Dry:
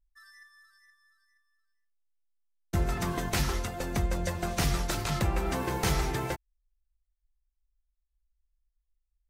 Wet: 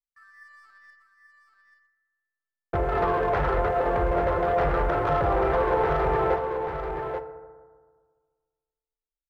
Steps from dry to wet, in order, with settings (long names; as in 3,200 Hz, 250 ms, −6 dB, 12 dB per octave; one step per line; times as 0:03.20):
low-pass filter 1,600 Hz 24 dB per octave
noise gate with hold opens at −58 dBFS
low shelf with overshoot 340 Hz −9.5 dB, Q 3
brickwall limiter −28.5 dBFS, peak gain reduction 10 dB
leveller curve on the samples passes 1
automatic gain control gain up to 10.5 dB
single-tap delay 835 ms −7 dB
feedback delay network reverb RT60 1.6 s, low-frequency decay 1.1×, high-frequency decay 0.35×, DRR 9.5 dB